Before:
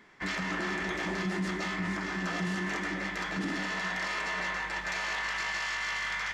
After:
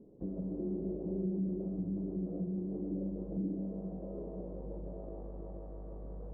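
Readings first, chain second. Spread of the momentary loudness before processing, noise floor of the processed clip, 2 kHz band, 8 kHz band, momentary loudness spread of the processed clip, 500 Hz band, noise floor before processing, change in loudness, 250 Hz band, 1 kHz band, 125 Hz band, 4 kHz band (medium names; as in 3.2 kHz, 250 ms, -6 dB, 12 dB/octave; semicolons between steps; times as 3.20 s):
2 LU, -45 dBFS, under -40 dB, under -35 dB, 11 LU, -1.0 dB, -37 dBFS, -7.0 dB, -0.5 dB, -24.0 dB, -0.5 dB, under -40 dB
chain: elliptic low-pass 530 Hz, stop band 80 dB; compression 2:1, threshold -49 dBFS, peak gain reduction 11 dB; on a send: flutter echo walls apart 7.1 m, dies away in 0.32 s; on the sum: trim +7 dB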